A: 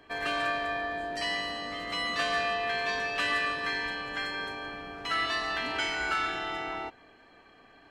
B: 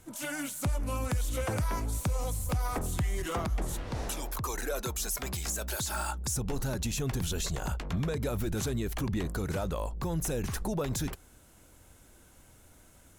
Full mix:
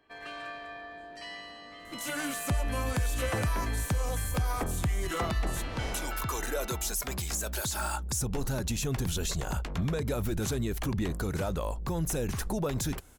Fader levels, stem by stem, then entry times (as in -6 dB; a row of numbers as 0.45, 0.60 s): -11.0, +1.0 dB; 0.00, 1.85 s